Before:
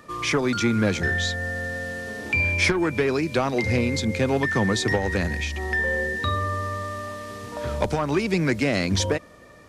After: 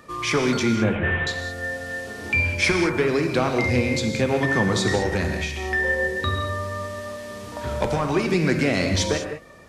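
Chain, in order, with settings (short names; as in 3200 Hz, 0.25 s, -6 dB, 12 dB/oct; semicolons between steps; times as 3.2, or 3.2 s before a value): 0.75–1.27 CVSD 16 kbps; non-linear reverb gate 0.23 s flat, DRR 3.5 dB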